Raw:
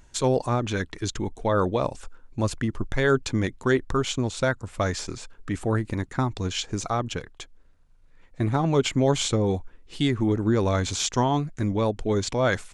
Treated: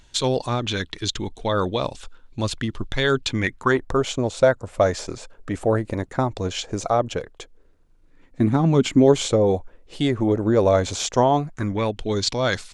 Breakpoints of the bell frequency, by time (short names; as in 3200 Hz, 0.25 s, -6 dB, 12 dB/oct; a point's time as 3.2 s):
bell +11.5 dB 0.94 oct
3.25 s 3600 Hz
3.92 s 580 Hz
7.13 s 580 Hz
8.77 s 200 Hz
9.34 s 580 Hz
11.34 s 580 Hz
12.11 s 4400 Hz